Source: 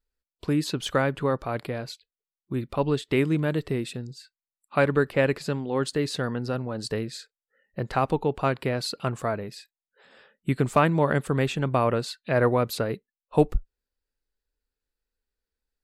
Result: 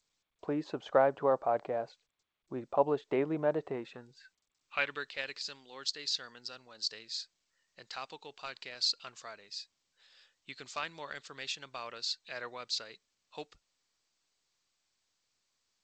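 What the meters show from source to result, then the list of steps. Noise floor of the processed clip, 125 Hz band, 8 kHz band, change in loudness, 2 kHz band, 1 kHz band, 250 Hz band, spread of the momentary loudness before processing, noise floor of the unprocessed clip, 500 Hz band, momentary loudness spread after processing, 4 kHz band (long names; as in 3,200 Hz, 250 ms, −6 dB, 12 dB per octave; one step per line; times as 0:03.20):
−82 dBFS, −23.0 dB, −5.5 dB, −9.0 dB, −9.0 dB, −8.5 dB, −14.5 dB, 13 LU, below −85 dBFS, −9.0 dB, 18 LU, −0.5 dB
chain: band-pass filter sweep 710 Hz → 4,900 Hz, 0:03.62–0:05.28
level +4 dB
G.722 64 kbit/s 16,000 Hz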